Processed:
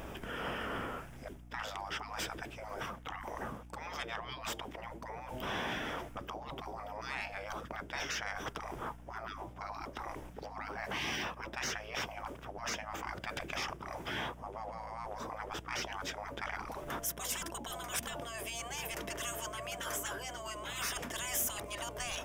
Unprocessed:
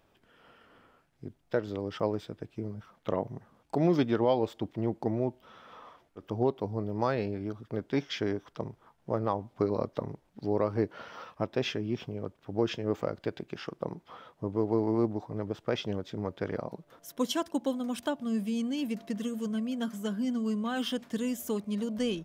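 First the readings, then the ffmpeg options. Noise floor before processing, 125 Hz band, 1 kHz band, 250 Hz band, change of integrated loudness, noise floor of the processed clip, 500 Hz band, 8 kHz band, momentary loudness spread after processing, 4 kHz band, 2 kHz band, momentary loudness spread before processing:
−68 dBFS, −11.5 dB, −1.0 dB, −17.0 dB, −7.0 dB, −50 dBFS, −12.5 dB, +9.0 dB, 8 LU, +0.5 dB, +5.0 dB, 13 LU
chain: -af "areverse,acompressor=threshold=-39dB:ratio=16,areverse,afftfilt=real='re*lt(hypot(re,im),0.00631)':imag='im*lt(hypot(re,im),0.00631)':win_size=1024:overlap=0.75,aeval=exprs='0.0158*sin(PI/2*2.82*val(0)/0.0158)':channel_layout=same,aeval=exprs='val(0)+0.000891*(sin(2*PI*60*n/s)+sin(2*PI*2*60*n/s)/2+sin(2*PI*3*60*n/s)/3+sin(2*PI*4*60*n/s)/4+sin(2*PI*5*60*n/s)/5)':channel_layout=same,equalizer=frequency=4200:width=3.9:gain=-12.5,volume=9dB"

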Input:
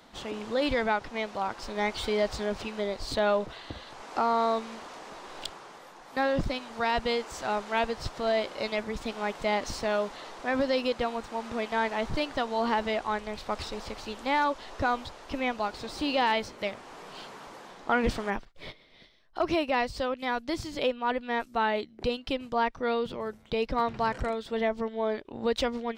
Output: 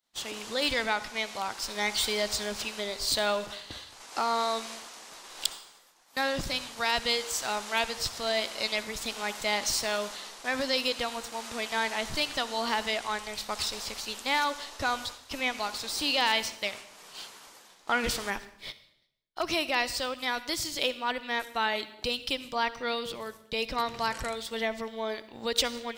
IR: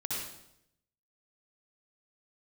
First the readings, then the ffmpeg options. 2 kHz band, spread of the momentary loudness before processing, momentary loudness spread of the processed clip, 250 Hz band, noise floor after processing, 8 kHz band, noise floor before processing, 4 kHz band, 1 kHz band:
+2.0 dB, 13 LU, 11 LU, −6.0 dB, −57 dBFS, +12.5 dB, −53 dBFS, +7.5 dB, −2.5 dB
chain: -filter_complex "[0:a]agate=range=-33dB:threshold=-39dB:ratio=3:detection=peak,crystalizer=i=9:c=0,asplit=2[link_01][link_02];[1:a]atrim=start_sample=2205[link_03];[link_02][link_03]afir=irnorm=-1:irlink=0,volume=-16.5dB[link_04];[link_01][link_04]amix=inputs=2:normalize=0,volume=-7.5dB"

